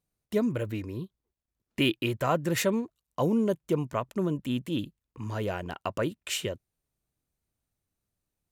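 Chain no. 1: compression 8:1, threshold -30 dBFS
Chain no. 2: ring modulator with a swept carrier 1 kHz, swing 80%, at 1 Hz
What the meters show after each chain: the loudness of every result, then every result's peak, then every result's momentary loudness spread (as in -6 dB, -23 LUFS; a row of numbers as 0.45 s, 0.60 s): -36.0 LUFS, -32.5 LUFS; -19.0 dBFS, -13.0 dBFS; 7 LU, 11 LU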